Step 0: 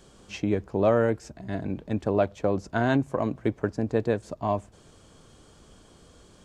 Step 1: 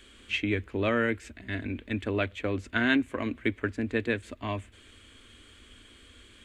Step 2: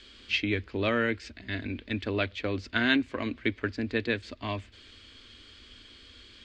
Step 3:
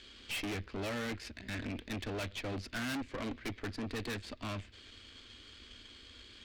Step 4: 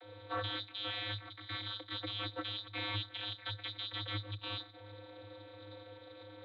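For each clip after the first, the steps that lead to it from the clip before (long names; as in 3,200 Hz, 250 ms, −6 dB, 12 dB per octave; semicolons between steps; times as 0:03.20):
drawn EQ curve 100 Hz 0 dB, 150 Hz −23 dB, 240 Hz +1 dB, 800 Hz −12 dB, 2,100 Hz +12 dB, 3,500 Hz +8 dB, 5,400 Hz −8 dB, 8,000 Hz 0 dB
low-pass with resonance 4,800 Hz, resonance Q 4.4; level −1 dB
tube saturation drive 38 dB, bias 0.8; level +2.5 dB
voice inversion scrambler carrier 3,800 Hz; noise that follows the level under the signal 33 dB; channel vocoder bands 32, square 103 Hz; level −1 dB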